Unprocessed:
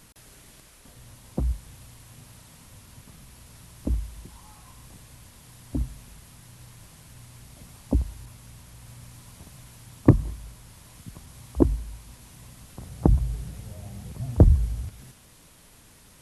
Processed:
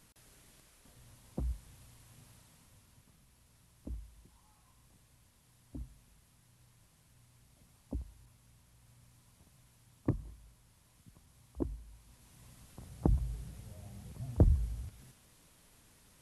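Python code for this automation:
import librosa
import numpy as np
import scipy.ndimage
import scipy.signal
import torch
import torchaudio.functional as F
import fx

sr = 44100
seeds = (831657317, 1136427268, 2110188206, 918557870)

y = fx.gain(x, sr, db=fx.line((2.28, -10.5), (3.22, -17.0), (11.81, -17.0), (12.5, -10.0)))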